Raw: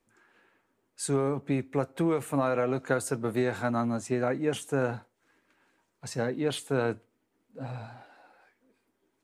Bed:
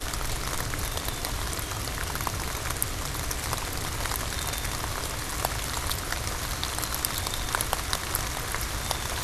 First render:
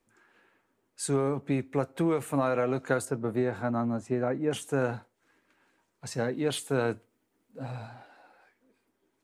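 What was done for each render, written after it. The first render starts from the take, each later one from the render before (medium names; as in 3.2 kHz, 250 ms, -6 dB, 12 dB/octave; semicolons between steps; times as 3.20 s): 3.05–4.51 s: treble shelf 2.1 kHz -12 dB; 6.37–7.88 s: treble shelf 6.6 kHz +5 dB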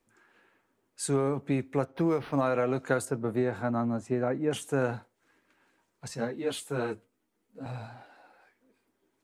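1.85–2.41 s: decimation joined by straight lines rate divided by 6×; 6.08–7.66 s: three-phase chorus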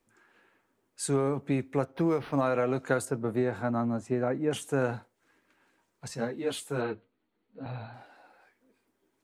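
6.81–7.94 s: brick-wall FIR low-pass 4.6 kHz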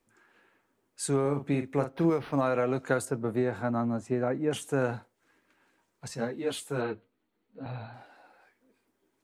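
1.21–2.10 s: doubling 42 ms -8 dB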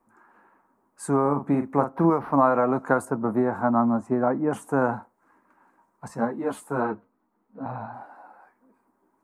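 FFT filter 130 Hz 0 dB, 210 Hz +9 dB, 460 Hz +2 dB, 1 kHz +15 dB, 3.3 kHz -15 dB, 9.9 kHz -2 dB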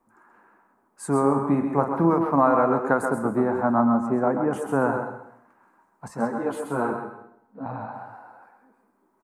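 delay 132 ms -8 dB; plate-style reverb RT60 0.72 s, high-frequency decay 0.85×, pre-delay 100 ms, DRR 9 dB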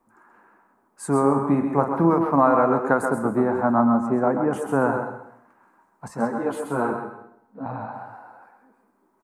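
trim +1.5 dB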